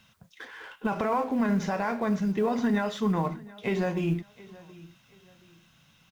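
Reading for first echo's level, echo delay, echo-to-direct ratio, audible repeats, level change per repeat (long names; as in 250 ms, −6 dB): −21.0 dB, 724 ms, −20.5 dB, 2, −10.0 dB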